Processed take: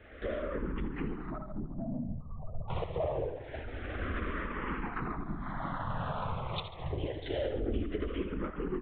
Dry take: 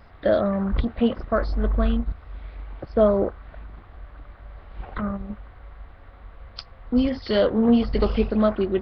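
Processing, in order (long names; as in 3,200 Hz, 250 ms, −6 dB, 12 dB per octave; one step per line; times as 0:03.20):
camcorder AGC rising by 19 dB per second
parametric band 63 Hz −14.5 dB 0.48 octaves
mains-hum notches 50/100/150/200/250 Hz
downward compressor 6 to 1, threshold −28 dBFS, peak gain reduction 14.5 dB
asymmetric clip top −30.5 dBFS
0:01.30–0:02.70: spectral peaks only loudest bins 8
soft clipping −21.5 dBFS, distortion −23 dB
repeating echo 73 ms, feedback 55%, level −7 dB
linear-prediction vocoder at 8 kHz whisper
frequency shifter mixed with the dry sound −0.26 Hz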